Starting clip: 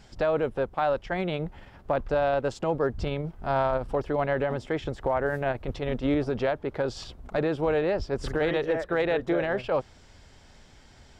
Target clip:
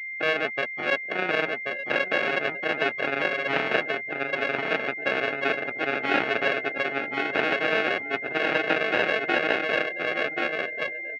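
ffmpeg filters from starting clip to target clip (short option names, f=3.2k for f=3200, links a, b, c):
-filter_complex "[0:a]equalizer=f=750:t=o:w=0.23:g=-6,asplit=2[a][b];[b]adelay=876,lowpass=f=910:p=1,volume=-10dB,asplit=2[c][d];[d]adelay=876,lowpass=f=910:p=1,volume=0.21,asplit=2[e][f];[f]adelay=876,lowpass=f=910:p=1,volume=0.21[g];[c][e][g]amix=inputs=3:normalize=0[h];[a][h]amix=inputs=2:normalize=0,acrusher=samples=40:mix=1:aa=0.000001,crystalizer=i=1.5:c=0,asplit=3[i][j][k];[i]afade=t=out:st=3.82:d=0.02[l];[j]acompressor=threshold=-32dB:ratio=12,afade=t=in:st=3.82:d=0.02,afade=t=out:st=4.32:d=0.02[m];[k]afade=t=in:st=4.32:d=0.02[n];[l][m][n]amix=inputs=3:normalize=0,asplit=2[o][p];[p]aecho=0:1:1083:0.708[q];[o][q]amix=inputs=2:normalize=0,aeval=exprs='0.891*(cos(1*acos(clip(val(0)/0.891,-1,1)))-cos(1*PI/2))+0.251*(cos(8*acos(clip(val(0)/0.891,-1,1)))-cos(8*PI/2))':c=same,afftdn=nr=26:nf=-33,aeval=exprs='val(0)+0.0126*sin(2*PI*2100*n/s)':c=same,highpass=490,equalizer=f=530:t=q:w=4:g=-6,equalizer=f=960:t=q:w=4:g=-4,equalizer=f=1.4k:t=q:w=4:g=3,equalizer=f=2.4k:t=q:w=4:g=6,lowpass=f=2.9k:w=0.5412,lowpass=f=2.9k:w=1.3066,volume=3.5dB"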